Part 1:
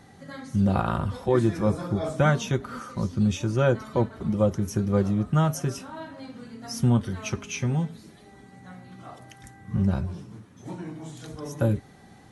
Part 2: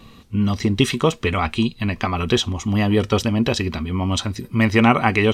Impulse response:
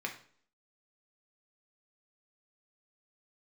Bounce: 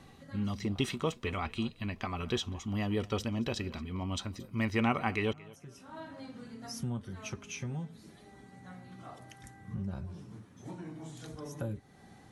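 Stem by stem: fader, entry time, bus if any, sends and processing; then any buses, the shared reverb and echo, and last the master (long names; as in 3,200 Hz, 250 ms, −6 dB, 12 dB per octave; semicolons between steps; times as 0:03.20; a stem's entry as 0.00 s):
−4.5 dB, 0.00 s, no send, no echo send, downward compressor 2 to 1, threshold −37 dBFS, peak gain reduction 12 dB; automatic ducking −21 dB, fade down 1.15 s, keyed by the second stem
−14.5 dB, 0.00 s, no send, echo send −21.5 dB, no processing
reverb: not used
echo: repeating echo 225 ms, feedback 24%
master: no processing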